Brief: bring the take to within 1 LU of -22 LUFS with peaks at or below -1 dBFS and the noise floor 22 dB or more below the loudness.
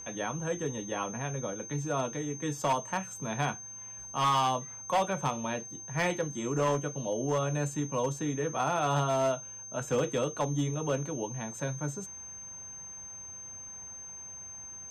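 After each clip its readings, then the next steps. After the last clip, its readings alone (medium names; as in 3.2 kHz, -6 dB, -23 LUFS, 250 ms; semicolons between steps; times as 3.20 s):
clipped samples 1.0%; clipping level -22.0 dBFS; steady tone 6.3 kHz; tone level -42 dBFS; loudness -32.5 LUFS; peak level -22.0 dBFS; loudness target -22.0 LUFS
-> clip repair -22 dBFS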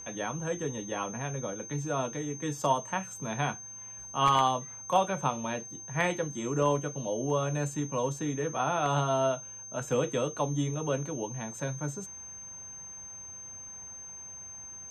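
clipped samples 0.0%; steady tone 6.3 kHz; tone level -42 dBFS
-> band-stop 6.3 kHz, Q 30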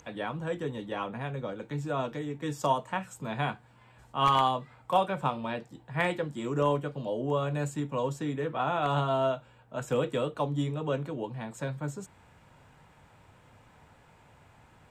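steady tone not found; loudness -31.5 LUFS; peak level -13.0 dBFS; loudness target -22.0 LUFS
-> trim +9.5 dB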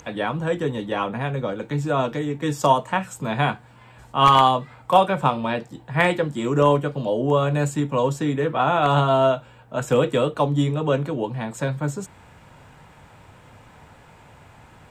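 loudness -22.0 LUFS; peak level -3.5 dBFS; noise floor -50 dBFS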